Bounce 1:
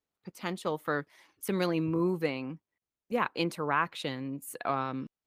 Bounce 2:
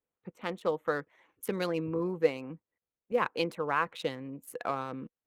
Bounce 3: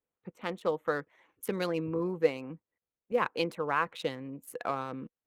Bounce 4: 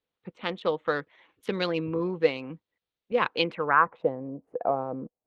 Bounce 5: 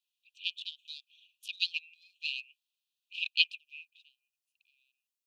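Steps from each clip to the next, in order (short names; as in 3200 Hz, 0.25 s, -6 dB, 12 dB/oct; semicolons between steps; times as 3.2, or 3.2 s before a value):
Wiener smoothing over 9 samples; harmonic-percussive split harmonic -5 dB; bell 490 Hz +8.5 dB 0.21 oct
nothing audible
low-pass sweep 3700 Hz -> 690 Hz, 3.39–4.06; gain +3 dB
brick-wall FIR high-pass 2400 Hz; gain +4 dB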